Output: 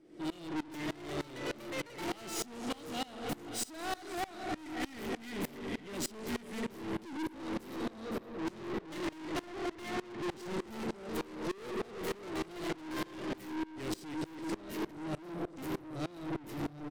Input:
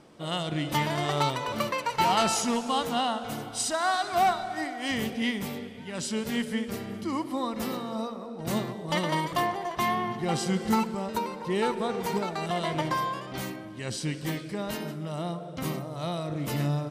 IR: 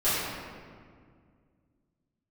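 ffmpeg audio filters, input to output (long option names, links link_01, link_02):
-filter_complex "[0:a]equalizer=frequency=315:width_type=o:width=0.33:gain=10,equalizer=frequency=1000:width_type=o:width=0.33:gain=-11,equalizer=frequency=2000:width_type=o:width=0.33:gain=6,dynaudnorm=framelen=580:gausssize=13:maxgain=8dB,asettb=1/sr,asplit=3[link_01][link_02][link_03];[link_01]atrim=end=8.054[link_04];[link_02]atrim=start=8.05:end=10.52,asetpts=PTS-STARTPTS,afade=type=in:duration=0.004:curve=qsin,afade=type=out:start_time=2.466:duration=0.004:curve=qsin,lowpass=5700[link_05];[link_03]atrim=start=10.516[link_06];[link_04][link_05]acrossfade=duration=0.004:curve1=hsin:curve2=qsin[link_07];[link_07][link_06]acrossfade=duration=0.004:curve1=qsin:curve2=hsin,acompressor=threshold=-28dB:ratio=2,equalizer=frequency=360:width=2.3:gain=9.5,aecho=1:1:518|1036|1554|2072:0.178|0.08|0.036|0.0162,aeval=exprs='(tanh(63.1*val(0)+0.2)-tanh(0.2))/63.1':channel_layout=same,aeval=exprs='val(0)*pow(10,-23*if(lt(mod(-3.3*n/s,1),2*abs(-3.3)/1000),1-mod(-3.3*n/s,1)/(2*abs(-3.3)/1000),(mod(-3.3*n/s,1)-2*abs(-3.3)/1000)/(1-2*abs(-3.3)/1000))/20)':channel_layout=same,volume=5dB"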